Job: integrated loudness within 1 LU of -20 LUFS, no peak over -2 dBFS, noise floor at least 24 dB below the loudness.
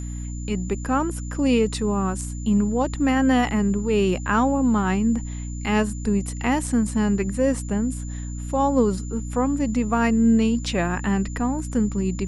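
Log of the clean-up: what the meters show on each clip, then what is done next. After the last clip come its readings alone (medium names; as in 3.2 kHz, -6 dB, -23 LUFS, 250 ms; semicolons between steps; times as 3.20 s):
hum 60 Hz; highest harmonic 300 Hz; hum level -28 dBFS; steady tone 7.1 kHz; tone level -42 dBFS; loudness -22.5 LUFS; peak level -7.5 dBFS; loudness target -20.0 LUFS
-> hum notches 60/120/180/240/300 Hz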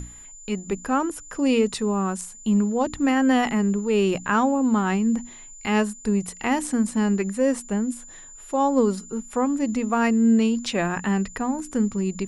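hum not found; steady tone 7.1 kHz; tone level -42 dBFS
-> band-stop 7.1 kHz, Q 30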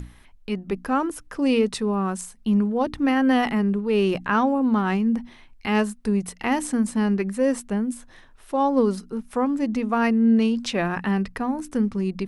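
steady tone not found; loudness -23.0 LUFS; peak level -8.5 dBFS; loudness target -20.0 LUFS
-> trim +3 dB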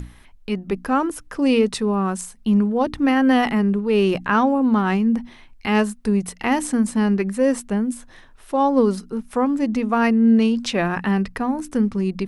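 loudness -20.0 LUFS; peak level -5.5 dBFS; noise floor -48 dBFS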